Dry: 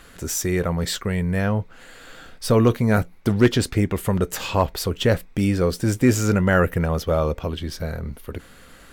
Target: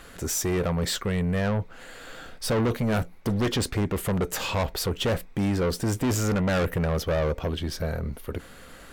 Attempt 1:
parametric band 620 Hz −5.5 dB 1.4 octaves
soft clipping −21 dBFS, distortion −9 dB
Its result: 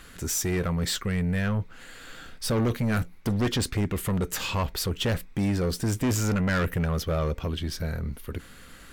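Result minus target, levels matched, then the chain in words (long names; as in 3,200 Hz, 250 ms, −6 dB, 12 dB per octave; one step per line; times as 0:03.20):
500 Hz band −3.0 dB
parametric band 620 Hz +3 dB 1.4 octaves
soft clipping −21 dBFS, distortion −7 dB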